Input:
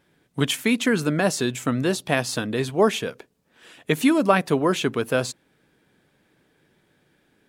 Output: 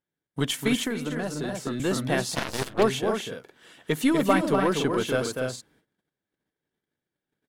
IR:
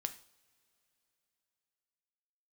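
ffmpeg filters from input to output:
-filter_complex "[0:a]bandreject=frequency=2500:width=11,aecho=1:1:244.9|291.5:0.501|0.447,agate=range=-23dB:threshold=-58dB:ratio=16:detection=peak,asplit=2[link_01][link_02];[link_02]aeval=exprs='clip(val(0),-1,0.0531)':channel_layout=same,volume=-7.5dB[link_03];[link_01][link_03]amix=inputs=2:normalize=0,asettb=1/sr,asplit=3[link_04][link_05][link_06];[link_04]atrim=end=0.844[link_07];[link_05]atrim=start=0.84:end=1.8,asetpts=PTS-STARTPTS,afade=type=in:duration=0.004:curve=qsin,afade=type=out:start_time=0.956:duration=0.004:curve=qsin,acrossover=split=210|1300[link_08][link_09][link_10];[link_08]acompressor=threshold=-31dB:ratio=4[link_11];[link_09]acompressor=threshold=-24dB:ratio=4[link_12];[link_10]acompressor=threshold=-34dB:ratio=4[link_13];[link_11][link_12][link_13]amix=inputs=3:normalize=0[link_14];[link_06]atrim=start=1.796[link_15];[link_07][link_14]acrossfade=duration=0.004:curve1=hsin:curve2=qsin[link_16];[link_16][link_15]acrossfade=duration=0.004:curve1=qsin:curve2=hsin,asplit=3[link_17][link_18][link_19];[link_17]afade=type=out:start_time=2.34:duration=0.02[link_20];[link_18]aeval=exprs='0.473*(cos(1*acos(clip(val(0)/0.473,-1,1)))-cos(1*PI/2))+0.0944*(cos(7*acos(clip(val(0)/0.473,-1,1)))-cos(7*PI/2))+0.0299*(cos(8*acos(clip(val(0)/0.473,-1,1)))-cos(8*PI/2))':channel_layout=same,afade=type=in:start_time=2.34:duration=0.02,afade=type=out:start_time=2.82:duration=0.02[link_21];[link_19]afade=type=in:start_time=2.82:duration=0.02[link_22];[link_20][link_21][link_22]amix=inputs=3:normalize=0,volume=-6dB"

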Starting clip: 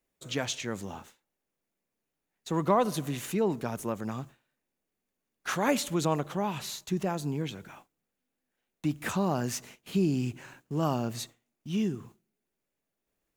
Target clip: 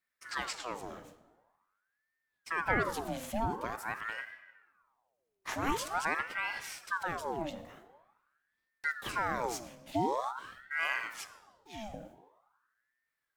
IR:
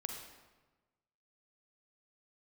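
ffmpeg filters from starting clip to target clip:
-filter_complex "[0:a]asettb=1/sr,asplit=3[link_01][link_02][link_03];[link_01]atrim=end=10.994[link_04];[link_02]atrim=start=10.99:end=11.94,asetpts=PTS-STARTPTS,afade=type=in:duration=0.004:curve=qsin,afade=type=out:start_time=0.946:duration=0.004:curve=qsin,highpass=430[link_05];[link_03]atrim=start=11.936[link_06];[link_04][link_05]acrossfade=duration=0.004:curve1=hsin:curve2=qsin[link_07];[link_07][link_06]acrossfade=duration=0.004:curve1=qsin:curve2=hsin,asplit=2[link_08][link_09];[1:a]atrim=start_sample=2205,lowshelf=frequency=190:gain=11.5[link_10];[link_09][link_10]afir=irnorm=-1:irlink=0,volume=-4dB[link_11];[link_08][link_11]amix=inputs=2:normalize=0,aeval=exprs='val(0)*sin(2*PI*1100*n/s+1100*0.65/0.46*sin(2*PI*0.46*n/s))':channel_layout=same,volume=-7dB"

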